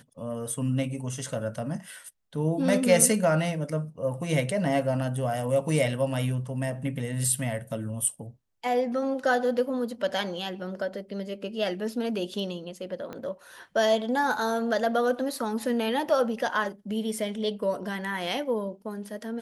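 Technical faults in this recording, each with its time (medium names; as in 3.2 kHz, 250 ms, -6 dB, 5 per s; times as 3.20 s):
13.13 s: pop -24 dBFS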